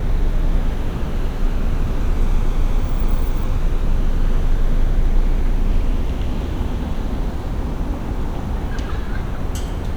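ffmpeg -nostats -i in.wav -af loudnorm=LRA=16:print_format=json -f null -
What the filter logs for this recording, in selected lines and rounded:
"input_i" : "-24.6",
"input_tp" : "-4.8",
"input_lra" : "3.1",
"input_thresh" : "-34.6",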